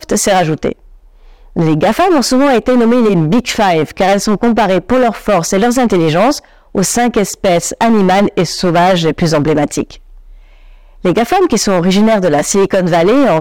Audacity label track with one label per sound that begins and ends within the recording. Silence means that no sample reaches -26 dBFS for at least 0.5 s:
1.560000	9.950000	sound